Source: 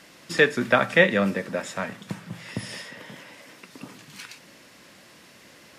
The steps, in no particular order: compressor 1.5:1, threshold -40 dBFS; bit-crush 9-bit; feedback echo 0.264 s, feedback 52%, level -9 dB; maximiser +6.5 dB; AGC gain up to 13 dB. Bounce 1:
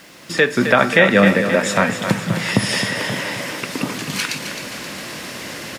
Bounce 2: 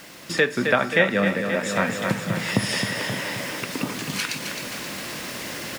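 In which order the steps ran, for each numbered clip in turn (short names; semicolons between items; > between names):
compressor > AGC > feedback echo > maximiser > bit-crush; feedback echo > bit-crush > AGC > compressor > maximiser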